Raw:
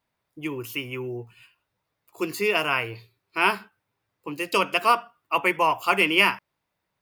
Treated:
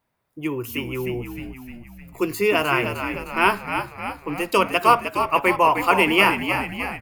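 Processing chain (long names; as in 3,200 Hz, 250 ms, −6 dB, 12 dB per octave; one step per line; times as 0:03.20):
parametric band 4,200 Hz −6 dB 2.1 octaves
on a send: echo with shifted repeats 307 ms, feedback 58%, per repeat −64 Hz, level −7.5 dB
on the sum: level +5 dB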